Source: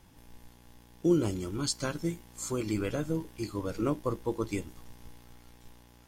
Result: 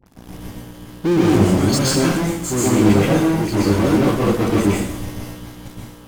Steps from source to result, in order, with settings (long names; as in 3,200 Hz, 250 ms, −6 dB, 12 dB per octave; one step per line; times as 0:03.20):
parametric band 200 Hz +8 dB 2.4 octaves
all-pass dispersion highs, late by 61 ms, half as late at 1,400 Hz
in parallel at −8 dB: fuzz pedal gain 40 dB, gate −48 dBFS
on the sum: dense smooth reverb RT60 0.66 s, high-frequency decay 0.9×, pre-delay 110 ms, DRR −5 dB
level −2.5 dB